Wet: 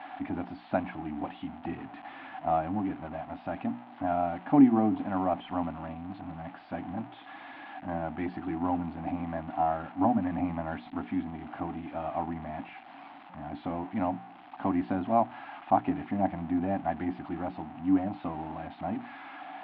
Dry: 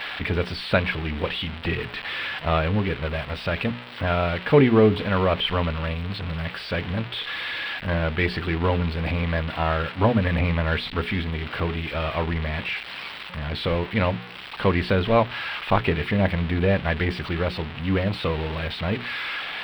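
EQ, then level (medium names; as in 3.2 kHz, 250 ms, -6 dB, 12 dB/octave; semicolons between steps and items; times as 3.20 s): two resonant band-passes 460 Hz, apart 1.4 oct; distance through air 120 m; +5.0 dB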